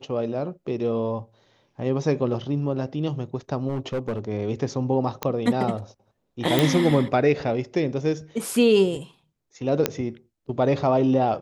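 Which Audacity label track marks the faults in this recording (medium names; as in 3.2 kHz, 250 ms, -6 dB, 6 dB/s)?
3.680000	4.190000	clipped -22 dBFS
5.230000	5.230000	pop -10 dBFS
6.590000	6.590000	pop
9.860000	9.860000	pop -5 dBFS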